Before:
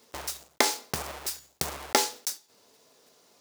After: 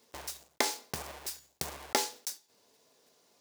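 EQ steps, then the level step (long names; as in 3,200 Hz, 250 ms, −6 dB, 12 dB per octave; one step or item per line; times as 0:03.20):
notch filter 1,300 Hz, Q 13
−6.0 dB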